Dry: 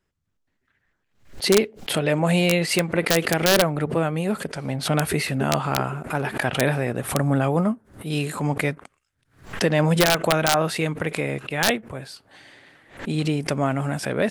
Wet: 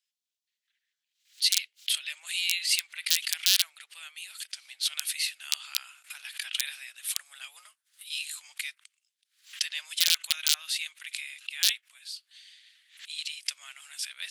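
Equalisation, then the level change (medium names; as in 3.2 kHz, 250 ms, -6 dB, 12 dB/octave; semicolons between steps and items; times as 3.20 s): ladder high-pass 2.7 kHz, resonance 30%; +6.0 dB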